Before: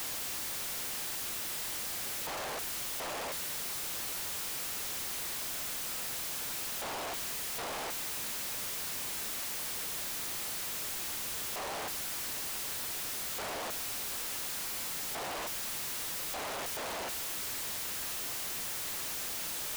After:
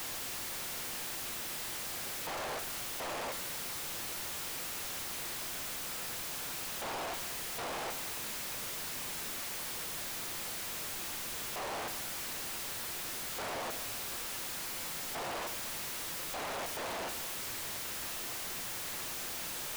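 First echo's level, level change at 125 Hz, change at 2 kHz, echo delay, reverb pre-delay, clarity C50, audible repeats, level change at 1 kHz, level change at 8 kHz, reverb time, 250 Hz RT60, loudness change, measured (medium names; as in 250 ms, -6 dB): no echo, +1.0 dB, -0.5 dB, no echo, 5 ms, 11.5 dB, no echo, +0.5 dB, -3.0 dB, 1.4 s, 1.8 s, -2.5 dB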